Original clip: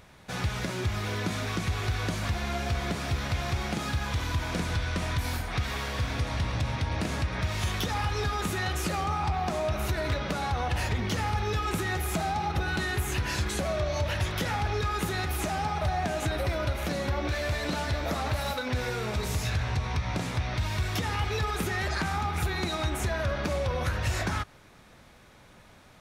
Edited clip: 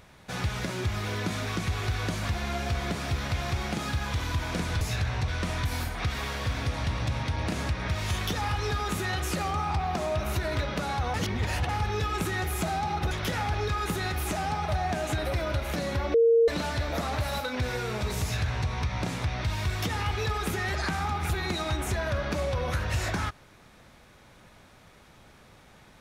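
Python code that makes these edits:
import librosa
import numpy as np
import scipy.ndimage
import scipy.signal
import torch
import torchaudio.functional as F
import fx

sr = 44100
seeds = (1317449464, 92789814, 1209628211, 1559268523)

y = fx.edit(x, sr, fx.reverse_span(start_s=10.67, length_s=0.55),
    fx.cut(start_s=12.64, length_s=1.6),
    fx.bleep(start_s=17.27, length_s=0.34, hz=461.0, db=-16.5),
    fx.duplicate(start_s=19.35, length_s=0.47, to_s=4.81), tone=tone)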